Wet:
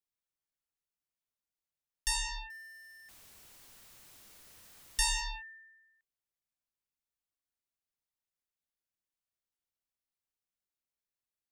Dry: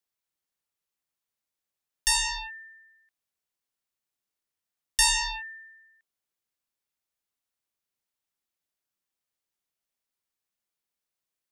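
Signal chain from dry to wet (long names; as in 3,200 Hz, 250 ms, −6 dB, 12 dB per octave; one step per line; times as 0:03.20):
0:02.50–0:05.21: converter with a step at zero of −41 dBFS
low-shelf EQ 130 Hz +9.5 dB
level −9 dB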